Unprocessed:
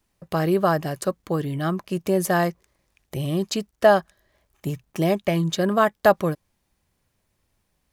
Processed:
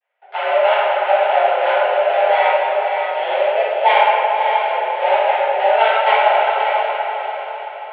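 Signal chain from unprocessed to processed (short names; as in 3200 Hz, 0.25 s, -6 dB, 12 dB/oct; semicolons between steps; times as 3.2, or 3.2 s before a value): switching dead time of 0.26 ms; recorder AGC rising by 7.4 dB/s; bell 890 Hz -9.5 dB 0.29 oct; diffused feedback echo 0.584 s, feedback 41%, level -5.5 dB; reverb RT60 2.5 s, pre-delay 4 ms, DRR -14.5 dB; mistuned SSB +230 Hz 340–2800 Hz; gain -6.5 dB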